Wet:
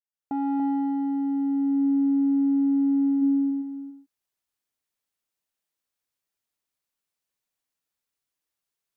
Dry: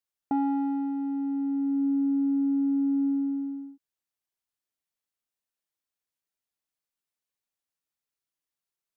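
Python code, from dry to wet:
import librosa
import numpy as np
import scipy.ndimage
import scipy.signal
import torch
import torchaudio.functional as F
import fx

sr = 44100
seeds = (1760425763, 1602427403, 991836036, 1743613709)

y = fx.fade_in_head(x, sr, length_s=0.64)
y = fx.low_shelf(y, sr, hz=150.0, db=11.0, at=(3.21, 3.61), fade=0.02)
y = y + 10.0 ** (-7.0 / 20.0) * np.pad(y, (int(286 * sr / 1000.0), 0))[:len(y)]
y = y * 10.0 ** (3.0 / 20.0)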